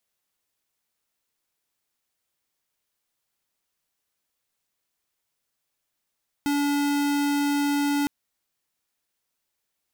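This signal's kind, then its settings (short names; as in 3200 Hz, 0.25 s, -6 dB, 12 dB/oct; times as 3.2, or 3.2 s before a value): tone square 287 Hz -23.5 dBFS 1.61 s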